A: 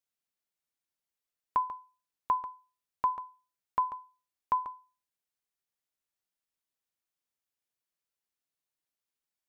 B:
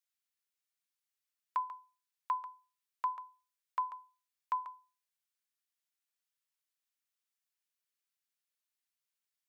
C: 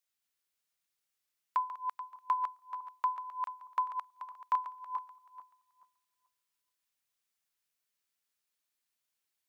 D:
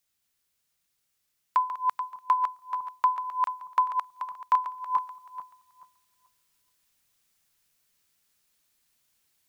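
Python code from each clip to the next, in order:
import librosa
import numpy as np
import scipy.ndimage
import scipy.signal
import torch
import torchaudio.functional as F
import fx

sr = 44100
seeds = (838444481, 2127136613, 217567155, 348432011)

y1 = scipy.signal.sosfilt(scipy.signal.butter(2, 1300.0, 'highpass', fs=sr, output='sos'), x)
y2 = fx.reverse_delay_fb(y1, sr, ms=216, feedback_pct=44, wet_db=-5)
y2 = F.gain(torch.from_numpy(y2), 3.0).numpy()
y3 = fx.bass_treble(y2, sr, bass_db=8, treble_db=2)
y3 = fx.rider(y3, sr, range_db=3, speed_s=0.5)
y3 = F.gain(torch.from_numpy(y3), 8.5).numpy()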